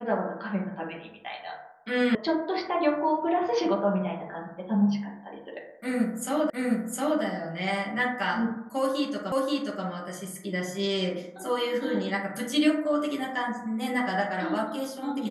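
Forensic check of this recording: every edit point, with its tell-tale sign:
2.15 s: sound stops dead
6.50 s: repeat of the last 0.71 s
9.32 s: repeat of the last 0.53 s

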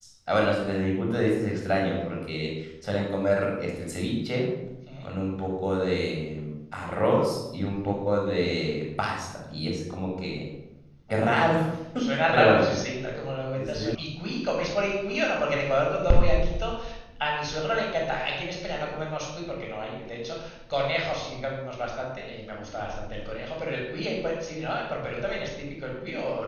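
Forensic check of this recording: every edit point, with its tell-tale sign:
13.95 s: sound stops dead

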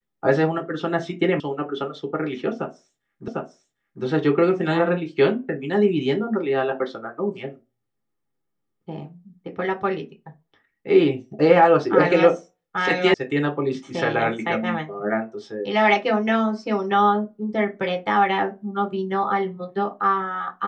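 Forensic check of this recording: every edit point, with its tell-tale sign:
1.40 s: sound stops dead
3.28 s: repeat of the last 0.75 s
13.14 s: sound stops dead

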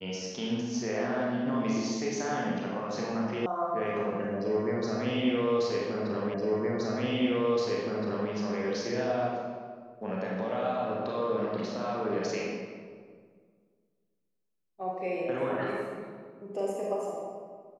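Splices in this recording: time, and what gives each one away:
3.46 s: sound stops dead
6.34 s: repeat of the last 1.97 s

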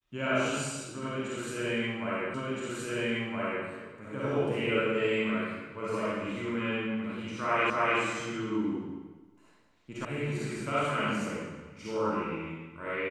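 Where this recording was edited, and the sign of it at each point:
2.34 s: repeat of the last 1.32 s
7.70 s: repeat of the last 0.29 s
10.05 s: sound stops dead

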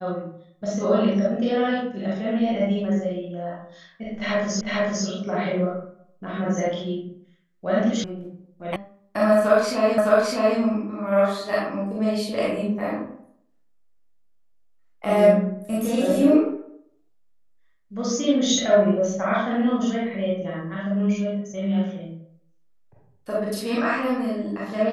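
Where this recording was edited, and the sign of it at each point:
4.61 s: repeat of the last 0.45 s
8.04 s: sound stops dead
8.76 s: sound stops dead
9.98 s: repeat of the last 0.61 s

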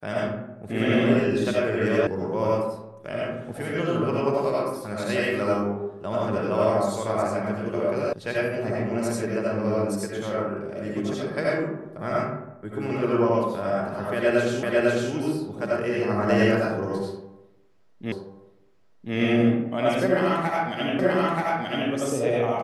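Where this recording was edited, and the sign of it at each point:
2.07 s: sound stops dead
8.13 s: sound stops dead
14.63 s: repeat of the last 0.5 s
18.12 s: repeat of the last 1.03 s
20.99 s: repeat of the last 0.93 s

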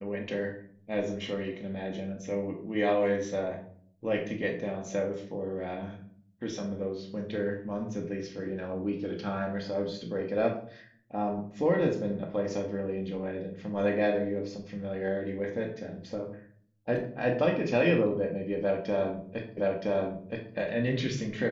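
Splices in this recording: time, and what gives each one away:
19.57 s: repeat of the last 0.97 s

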